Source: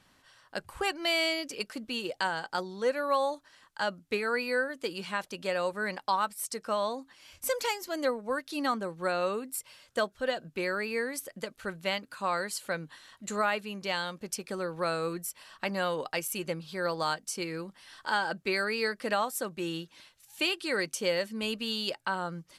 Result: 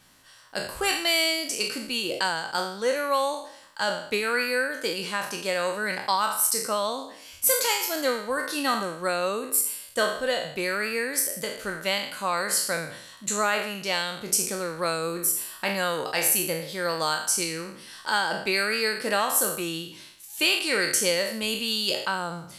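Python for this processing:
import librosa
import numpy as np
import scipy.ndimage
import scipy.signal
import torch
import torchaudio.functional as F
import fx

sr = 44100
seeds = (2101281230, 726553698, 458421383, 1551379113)

y = fx.spec_trails(x, sr, decay_s=0.65)
y = fx.high_shelf(y, sr, hz=5700.0, db=11.5)
y = y * librosa.db_to_amplitude(2.0)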